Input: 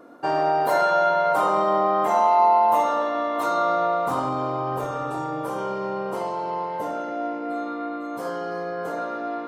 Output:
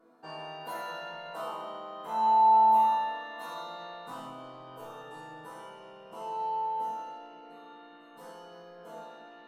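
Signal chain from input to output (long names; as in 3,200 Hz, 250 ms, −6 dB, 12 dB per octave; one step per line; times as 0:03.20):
resonators tuned to a chord E3 sus4, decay 0.73 s
hum removal 49.43 Hz, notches 17
level +9 dB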